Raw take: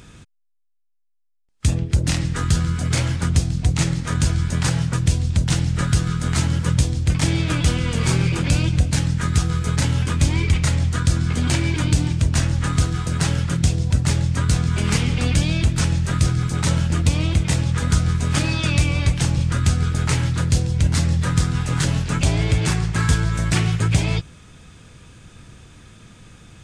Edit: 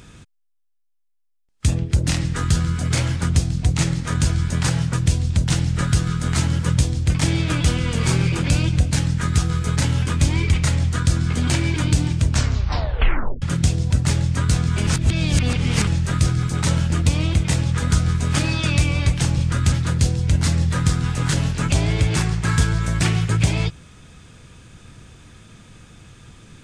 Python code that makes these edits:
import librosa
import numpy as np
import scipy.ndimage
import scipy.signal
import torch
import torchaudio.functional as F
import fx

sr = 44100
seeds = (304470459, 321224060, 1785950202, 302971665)

y = fx.edit(x, sr, fx.tape_stop(start_s=12.29, length_s=1.13),
    fx.reverse_span(start_s=14.87, length_s=1.0),
    fx.cut(start_s=19.72, length_s=0.51), tone=tone)